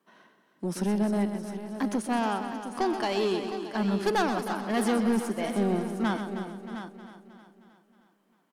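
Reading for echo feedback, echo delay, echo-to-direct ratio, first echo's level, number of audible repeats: no steady repeat, 0.126 s, -4.5 dB, -9.5 dB, 13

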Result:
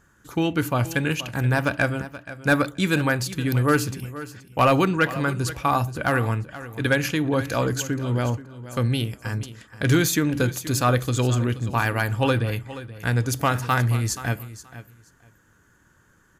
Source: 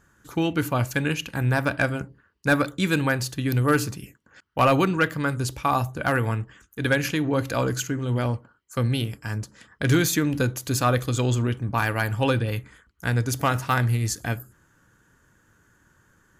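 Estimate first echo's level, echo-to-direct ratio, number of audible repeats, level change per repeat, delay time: -15.0 dB, -15.0 dB, 2, -15.0 dB, 0.478 s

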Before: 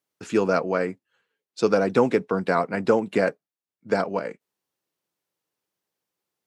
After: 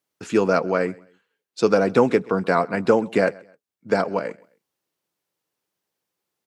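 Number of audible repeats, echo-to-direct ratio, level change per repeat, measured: 2, -23.5 dB, -10.0 dB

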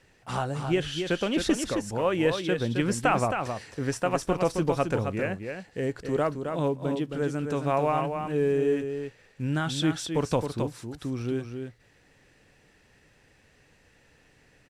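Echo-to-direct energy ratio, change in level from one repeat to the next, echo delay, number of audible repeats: -6.5 dB, no steady repeat, 0.267 s, 1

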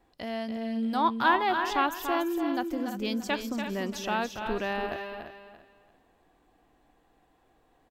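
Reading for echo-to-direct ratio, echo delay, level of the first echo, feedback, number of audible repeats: -5.5 dB, 0.288 s, -7.5 dB, no steady repeat, 5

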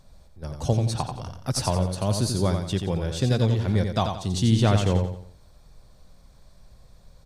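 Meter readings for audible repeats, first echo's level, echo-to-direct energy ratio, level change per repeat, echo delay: 4, -6.0 dB, -5.5 dB, -8.5 dB, 88 ms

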